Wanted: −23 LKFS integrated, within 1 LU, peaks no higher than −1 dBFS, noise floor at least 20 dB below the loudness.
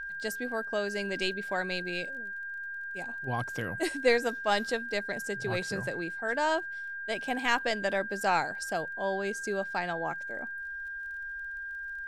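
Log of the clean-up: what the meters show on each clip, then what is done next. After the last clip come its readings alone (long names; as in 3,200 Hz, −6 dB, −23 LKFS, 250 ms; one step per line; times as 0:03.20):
crackle rate 28 per second; interfering tone 1,600 Hz; level of the tone −36 dBFS; integrated loudness −32.0 LKFS; sample peak −11.0 dBFS; target loudness −23.0 LKFS
→ click removal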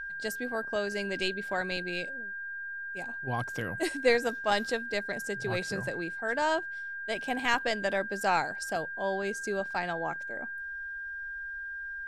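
crackle rate 0 per second; interfering tone 1,600 Hz; level of the tone −36 dBFS
→ notch filter 1,600 Hz, Q 30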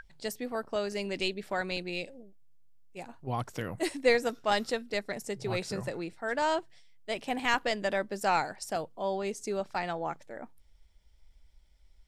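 interfering tone none found; integrated loudness −32.5 LKFS; sample peak −11.0 dBFS; target loudness −23.0 LKFS
→ level +9.5 dB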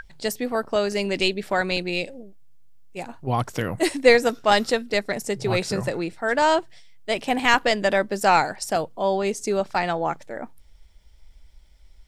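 integrated loudness −23.0 LKFS; sample peak −1.5 dBFS; background noise floor −51 dBFS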